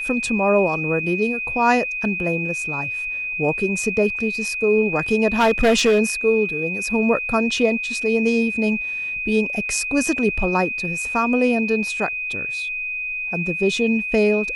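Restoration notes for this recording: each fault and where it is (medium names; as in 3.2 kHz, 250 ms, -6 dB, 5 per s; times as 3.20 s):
whine 2.5 kHz -24 dBFS
5.39–6.00 s: clipped -11.5 dBFS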